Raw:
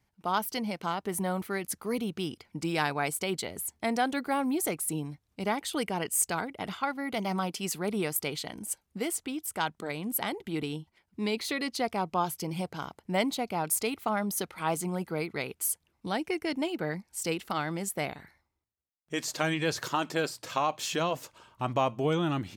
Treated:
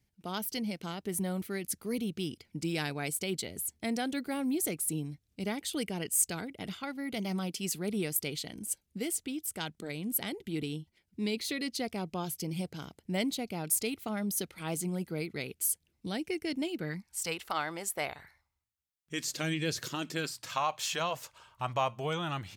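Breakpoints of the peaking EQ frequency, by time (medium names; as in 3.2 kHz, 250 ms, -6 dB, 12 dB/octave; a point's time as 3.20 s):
peaking EQ -13.5 dB 1.5 oct
16.76 s 1 kHz
17.45 s 190 Hz
18.02 s 190 Hz
19.39 s 920 Hz
20.07 s 920 Hz
20.67 s 280 Hz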